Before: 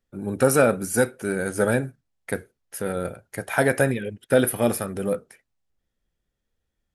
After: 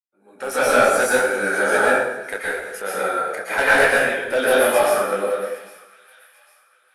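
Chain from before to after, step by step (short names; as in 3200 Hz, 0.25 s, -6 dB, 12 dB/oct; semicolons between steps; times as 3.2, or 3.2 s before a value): opening faded in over 0.58 s; HPF 710 Hz 12 dB/oct; hard clip -20.5 dBFS, distortion -11 dB; on a send: thin delay 0.802 s, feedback 38%, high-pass 1700 Hz, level -19 dB; on the sum: AGC gain up to 10 dB; LPF 3400 Hz 6 dB/oct; plate-style reverb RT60 1.1 s, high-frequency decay 0.7×, pre-delay 0.105 s, DRR -6 dB; detuned doubles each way 36 cents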